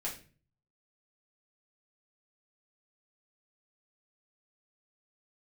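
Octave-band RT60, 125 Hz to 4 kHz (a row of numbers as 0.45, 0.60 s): 0.75, 0.55, 0.45, 0.35, 0.40, 0.35 s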